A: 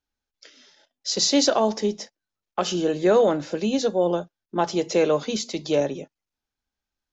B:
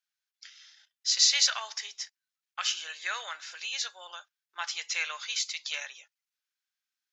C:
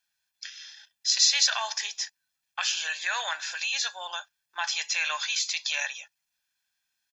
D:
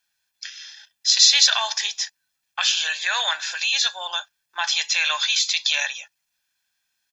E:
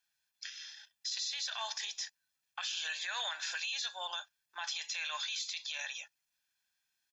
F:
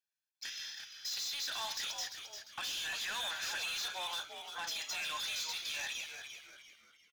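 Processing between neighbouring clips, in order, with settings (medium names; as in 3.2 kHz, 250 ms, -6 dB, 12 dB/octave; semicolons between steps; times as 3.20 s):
high-pass 1.4 kHz 24 dB/octave; dynamic bell 2.2 kHz, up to +5 dB, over -44 dBFS, Q 2.1
comb 1.2 ms, depth 56%; in parallel at -2 dB: compressor with a negative ratio -37 dBFS, ratio -1
dynamic bell 3.6 kHz, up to +7 dB, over -42 dBFS, Q 3.4; trim +5 dB
compression 3:1, threshold -24 dBFS, peak gain reduction 11 dB; peak limiter -20 dBFS, peak gain reduction 10 dB; trim -8 dB
waveshaping leveller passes 3; frequency-shifting echo 347 ms, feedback 38%, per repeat -120 Hz, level -8 dB; trim -6.5 dB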